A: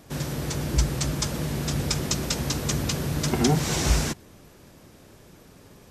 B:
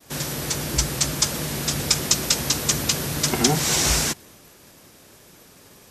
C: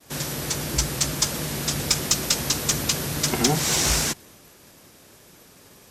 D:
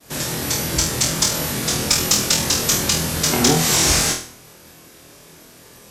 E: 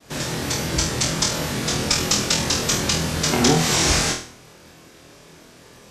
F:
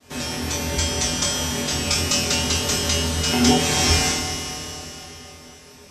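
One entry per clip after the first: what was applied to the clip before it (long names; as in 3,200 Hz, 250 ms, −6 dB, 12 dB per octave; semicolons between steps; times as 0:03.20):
spectral tilt +2 dB per octave; downward expander −49 dBFS; level +3.5 dB
tube saturation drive 6 dB, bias 0.35
flutter between parallel walls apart 4.2 metres, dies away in 0.44 s; level +3 dB
high-frequency loss of the air 55 metres
tuned comb filter 83 Hz, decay 0.26 s, harmonics odd, mix 90%; four-comb reverb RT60 3.8 s, combs from 31 ms, DRR 4 dB; level +8.5 dB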